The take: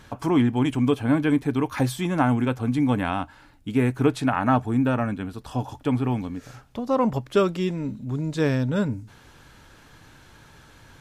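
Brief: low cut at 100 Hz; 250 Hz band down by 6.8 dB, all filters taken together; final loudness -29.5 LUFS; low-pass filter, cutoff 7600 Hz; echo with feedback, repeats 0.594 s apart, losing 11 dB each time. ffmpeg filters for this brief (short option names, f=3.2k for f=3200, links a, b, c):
-af "highpass=100,lowpass=7.6k,equalizer=f=250:t=o:g=-8,aecho=1:1:594|1188|1782:0.282|0.0789|0.0221,volume=-1.5dB"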